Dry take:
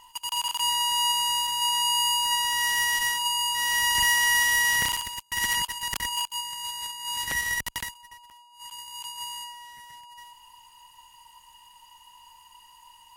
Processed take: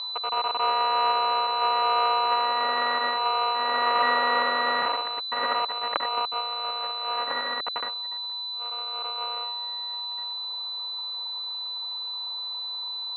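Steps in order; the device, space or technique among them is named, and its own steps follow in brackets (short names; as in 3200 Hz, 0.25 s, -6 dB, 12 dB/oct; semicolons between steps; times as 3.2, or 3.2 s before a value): toy sound module (decimation joined by straight lines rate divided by 8×; pulse-width modulation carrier 4000 Hz; speaker cabinet 540–4600 Hz, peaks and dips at 560 Hz +5 dB, 1200 Hz +7 dB, 3100 Hz +7 dB); high shelf 2900 Hz -9 dB; gain +4.5 dB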